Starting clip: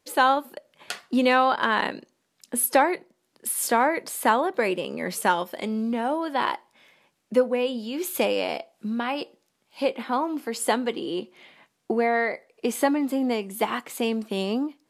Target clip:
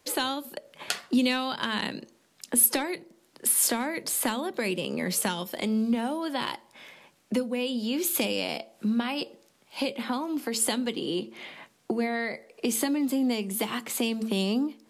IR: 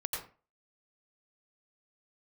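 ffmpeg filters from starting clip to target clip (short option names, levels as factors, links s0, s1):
-filter_complex "[0:a]acrossover=split=230|3000[s0][s1][s2];[s1]acompressor=threshold=0.0178:ratio=10[s3];[s0][s3][s2]amix=inputs=3:normalize=0,bandreject=f=111.9:t=h:w=4,bandreject=f=223.8:t=h:w=4,bandreject=f=335.7:t=h:w=4,bandreject=f=447.6:t=h:w=4,bandreject=f=559.5:t=h:w=4,asplit=2[s4][s5];[s5]acompressor=threshold=0.00708:ratio=6,volume=0.708[s6];[s4][s6]amix=inputs=2:normalize=0,volume=1.5"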